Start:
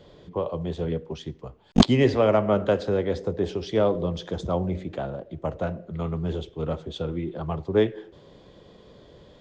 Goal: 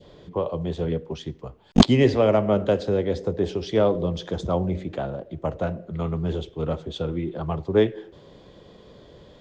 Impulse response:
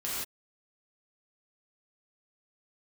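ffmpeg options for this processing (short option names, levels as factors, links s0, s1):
-af "adynamicequalizer=threshold=0.0126:dfrequency=1300:dqfactor=0.97:tfrequency=1300:tqfactor=0.97:attack=5:release=100:ratio=0.375:range=3:mode=cutabove:tftype=bell,volume=1.26"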